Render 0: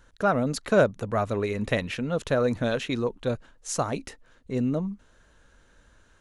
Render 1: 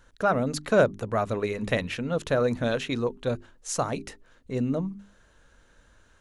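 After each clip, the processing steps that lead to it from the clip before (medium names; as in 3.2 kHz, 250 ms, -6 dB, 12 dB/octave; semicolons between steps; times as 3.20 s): hum notches 50/100/150/200/250/300/350/400 Hz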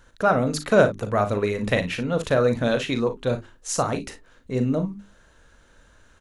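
early reflections 39 ms -10 dB, 57 ms -14 dB; trim +3.5 dB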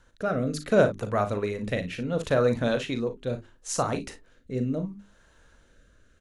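rotary cabinet horn 0.7 Hz; trim -2.5 dB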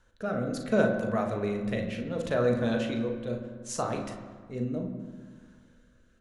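reverberation RT60 1.6 s, pre-delay 5 ms, DRR 3 dB; trim -5.5 dB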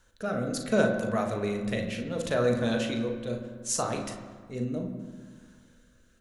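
treble shelf 3.9 kHz +10.5 dB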